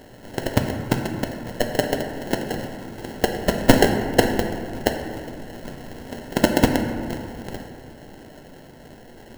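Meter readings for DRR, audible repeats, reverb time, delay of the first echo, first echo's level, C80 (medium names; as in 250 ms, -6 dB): 4.0 dB, no echo, 2.1 s, no echo, no echo, 7.5 dB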